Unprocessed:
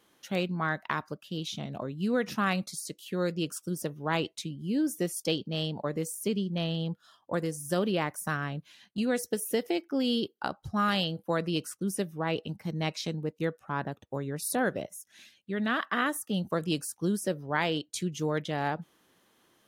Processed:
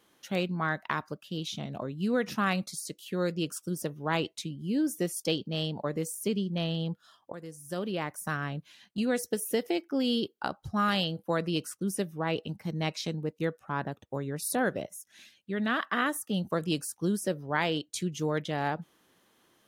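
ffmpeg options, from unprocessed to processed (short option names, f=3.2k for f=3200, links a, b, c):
-filter_complex "[0:a]asplit=2[a][b];[a]atrim=end=7.32,asetpts=PTS-STARTPTS,afade=t=out:st=7.316:d=0.004:c=hsin:silence=0.177828[c];[b]atrim=start=7.32,asetpts=PTS-STARTPTS,afade=t=in:d=1.18:silence=0.177828[d];[c][d]concat=n=2:v=0:a=1"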